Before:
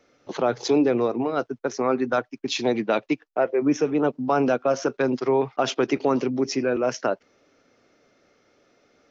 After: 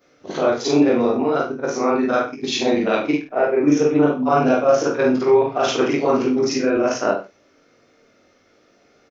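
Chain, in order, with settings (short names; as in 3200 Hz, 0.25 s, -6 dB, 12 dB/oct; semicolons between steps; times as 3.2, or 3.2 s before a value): short-time reversal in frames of 0.11 s; notch 860 Hz, Q 28; reverse bouncing-ball echo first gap 20 ms, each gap 1.1×, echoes 5; gain +6 dB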